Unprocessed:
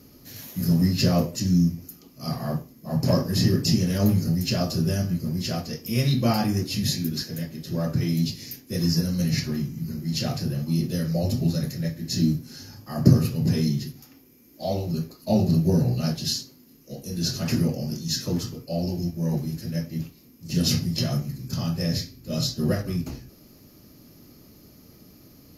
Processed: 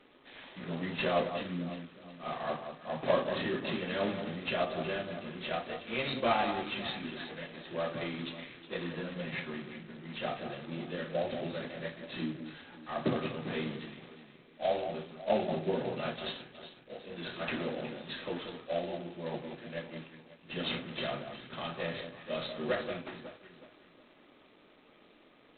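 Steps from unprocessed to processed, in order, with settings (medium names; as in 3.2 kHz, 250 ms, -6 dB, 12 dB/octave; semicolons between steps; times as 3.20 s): high-pass 530 Hz 12 dB/octave; 9.09–10.98 s: distance through air 180 m; band-stop 2.9 kHz, Q 28; echo whose repeats swap between lows and highs 183 ms, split 1.5 kHz, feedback 61%, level -8 dB; G.726 16 kbps 8 kHz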